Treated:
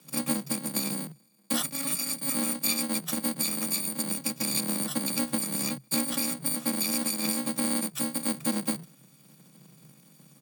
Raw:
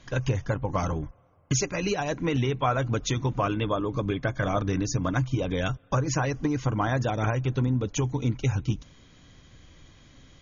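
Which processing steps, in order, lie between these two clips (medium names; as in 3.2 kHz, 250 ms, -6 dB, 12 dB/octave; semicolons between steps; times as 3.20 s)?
bit-reversed sample order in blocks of 128 samples; pitch shift -3.5 st; frequency shift +130 Hz; trim -2.5 dB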